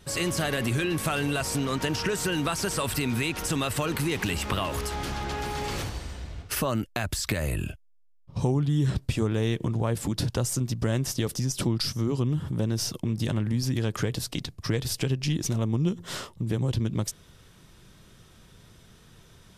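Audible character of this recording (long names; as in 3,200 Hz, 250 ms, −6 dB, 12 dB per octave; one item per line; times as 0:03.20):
background noise floor −55 dBFS
spectral slope −5.0 dB per octave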